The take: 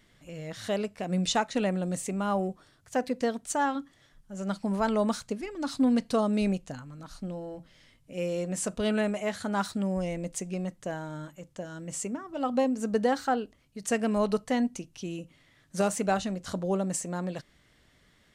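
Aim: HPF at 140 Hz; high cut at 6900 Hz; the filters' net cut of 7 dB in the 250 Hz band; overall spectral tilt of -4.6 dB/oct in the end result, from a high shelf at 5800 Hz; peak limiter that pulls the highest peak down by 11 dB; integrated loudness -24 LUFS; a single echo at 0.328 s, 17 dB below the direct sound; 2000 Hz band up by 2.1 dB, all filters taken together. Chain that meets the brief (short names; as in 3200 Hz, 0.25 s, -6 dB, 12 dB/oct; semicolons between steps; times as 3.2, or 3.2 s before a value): HPF 140 Hz; LPF 6900 Hz; bell 250 Hz -8 dB; bell 2000 Hz +3.5 dB; high shelf 5800 Hz -5 dB; limiter -23.5 dBFS; echo 0.328 s -17 dB; gain +12 dB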